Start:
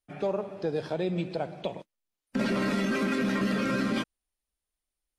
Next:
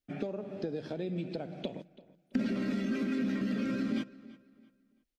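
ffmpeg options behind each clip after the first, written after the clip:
ffmpeg -i in.wav -filter_complex "[0:a]acompressor=threshold=-34dB:ratio=10,equalizer=frequency=250:width_type=o:width=0.67:gain=9,equalizer=frequency=1000:width_type=o:width=0.67:gain=-9,equalizer=frequency=10000:width_type=o:width=0.67:gain=-9,asplit=2[link_01][link_02];[link_02]adelay=334,lowpass=frequency=4900:poles=1,volume=-19dB,asplit=2[link_03][link_04];[link_04]adelay=334,lowpass=frequency=4900:poles=1,volume=0.33,asplit=2[link_05][link_06];[link_06]adelay=334,lowpass=frequency=4900:poles=1,volume=0.33[link_07];[link_01][link_03][link_05][link_07]amix=inputs=4:normalize=0" out.wav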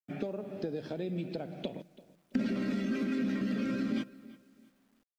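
ffmpeg -i in.wav -af "acrusher=bits=11:mix=0:aa=0.000001" out.wav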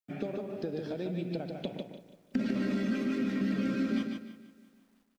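ffmpeg -i in.wav -af "aecho=1:1:149|298|447:0.562|0.141|0.0351" out.wav

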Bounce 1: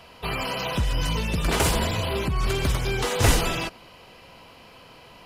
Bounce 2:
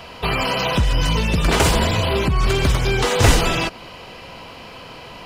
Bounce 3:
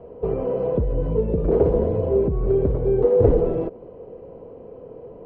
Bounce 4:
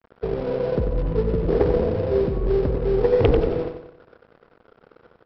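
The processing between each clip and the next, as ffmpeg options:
ffmpeg -i in.wav -filter_complex "[0:a]equalizer=frequency=12000:width=1.2:gain=-7.5,asplit=2[link_01][link_02];[link_02]acompressor=threshold=-32dB:ratio=6,volume=1.5dB[link_03];[link_01][link_03]amix=inputs=2:normalize=0,volume=4dB" out.wav
ffmpeg -i in.wav -af "lowpass=frequency=460:width_type=q:width=4.9,volume=-5.5dB" out.wav
ffmpeg -i in.wav -af "aresample=11025,aeval=exprs='sgn(val(0))*max(abs(val(0))-0.015,0)':channel_layout=same,aresample=44100,aeval=exprs='0.841*(cos(1*acos(clip(val(0)/0.841,-1,1)))-cos(1*PI/2))+0.168*(cos(6*acos(clip(val(0)/0.841,-1,1)))-cos(6*PI/2))+0.119*(cos(8*acos(clip(val(0)/0.841,-1,1)))-cos(8*PI/2))':channel_layout=same,aecho=1:1:92|184|276|368|460:0.422|0.186|0.0816|0.0359|0.0158,volume=-1dB" out.wav

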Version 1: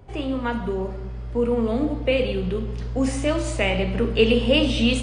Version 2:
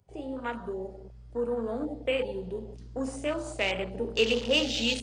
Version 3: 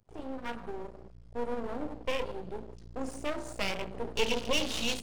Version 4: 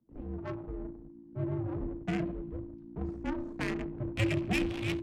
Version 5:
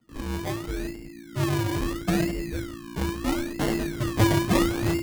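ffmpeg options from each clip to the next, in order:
ffmpeg -i in.wav -af "afwtdn=0.0316,bass=frequency=250:gain=-10,treble=frequency=4000:gain=14,volume=-6.5dB" out.wav
ffmpeg -i in.wav -af "aeval=exprs='max(val(0),0)':channel_layout=same" out.wav
ffmpeg -i in.wav -filter_complex "[0:a]afreqshift=-340,acrossover=split=130[link_01][link_02];[link_02]adynamicsmooth=sensitivity=2.5:basefreq=850[link_03];[link_01][link_03]amix=inputs=2:normalize=0" out.wav
ffmpeg -i in.wav -af "acrusher=samples=26:mix=1:aa=0.000001:lfo=1:lforange=15.6:lforate=0.75,volume=8.5dB" out.wav

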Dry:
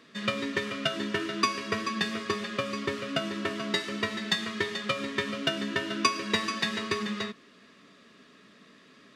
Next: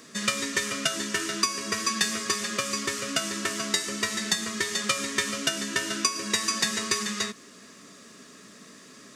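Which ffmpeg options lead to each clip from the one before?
ffmpeg -i in.wav -filter_complex "[0:a]highshelf=frequency=4900:width_type=q:width=1.5:gain=12,acrossover=split=1200[link_01][link_02];[link_01]acompressor=threshold=-39dB:ratio=6[link_03];[link_02]alimiter=limit=-14.5dB:level=0:latency=1:release=489[link_04];[link_03][link_04]amix=inputs=2:normalize=0,volume=6dB" out.wav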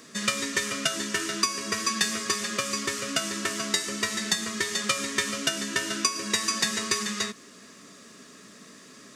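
ffmpeg -i in.wav -af anull out.wav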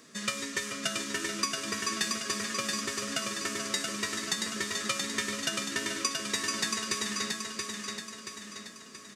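ffmpeg -i in.wav -af "aecho=1:1:678|1356|2034|2712|3390|4068:0.631|0.309|0.151|0.0742|0.0364|0.0178,volume=-6dB" out.wav

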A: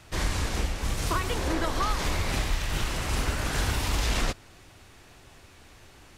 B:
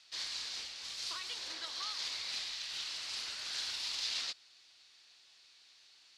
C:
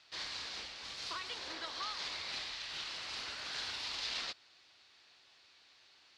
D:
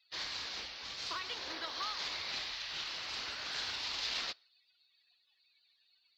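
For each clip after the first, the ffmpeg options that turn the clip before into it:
ffmpeg -i in.wav -af "lowpass=frequency=4400:width_type=q:width=3.1,aderivative,volume=-3.5dB" out.wav
ffmpeg -i in.wav -af "lowpass=frequency=1400:poles=1,volume=7dB" out.wav
ffmpeg -i in.wav -af "afftdn=noise_reduction=25:noise_floor=-59,acrusher=bits=9:mode=log:mix=0:aa=0.000001,volume=2dB" out.wav

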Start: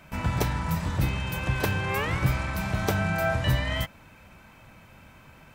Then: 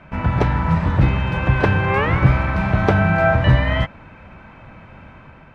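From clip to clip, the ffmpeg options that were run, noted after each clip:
ffmpeg -i in.wav -af "lowpass=2100,dynaudnorm=framelen=180:gausssize=5:maxgain=3dB,volume=7.5dB" out.wav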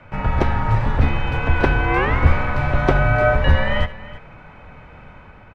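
ffmpeg -i in.wav -af "afreqshift=-53,aecho=1:1:73|328:0.119|0.141" out.wav

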